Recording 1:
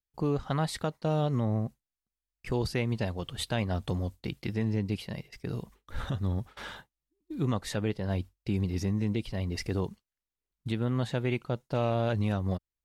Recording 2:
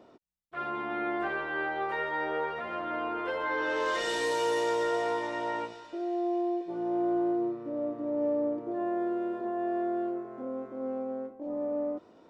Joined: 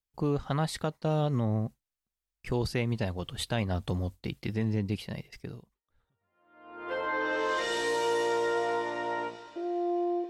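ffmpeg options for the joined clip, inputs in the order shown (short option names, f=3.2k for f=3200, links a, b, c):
-filter_complex "[0:a]apad=whole_dur=10.29,atrim=end=10.29,atrim=end=6.94,asetpts=PTS-STARTPTS[a];[1:a]atrim=start=1.77:end=6.66,asetpts=PTS-STARTPTS[b];[a][b]acrossfade=d=1.54:c1=exp:c2=exp"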